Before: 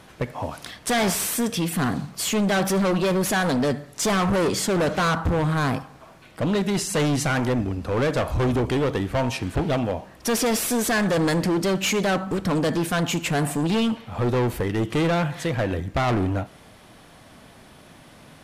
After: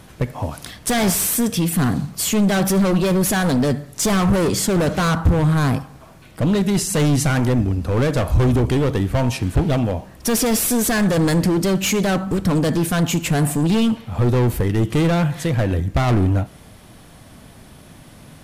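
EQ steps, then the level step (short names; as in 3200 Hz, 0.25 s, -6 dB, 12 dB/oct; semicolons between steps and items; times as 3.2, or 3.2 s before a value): low shelf 230 Hz +10.5 dB; high shelf 7100 Hz +9.5 dB; 0.0 dB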